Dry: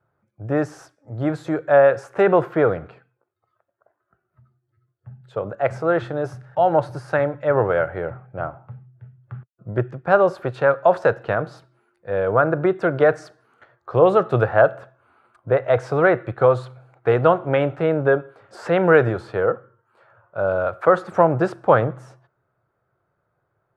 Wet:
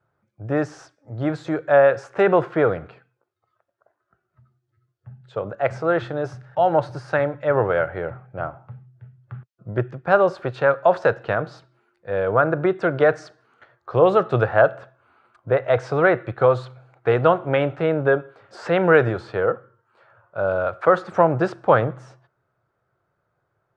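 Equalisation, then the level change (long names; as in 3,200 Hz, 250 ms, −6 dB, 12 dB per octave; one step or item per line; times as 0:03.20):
high-frequency loss of the air 110 metres
high-shelf EQ 3,100 Hz +10.5 dB
−1.0 dB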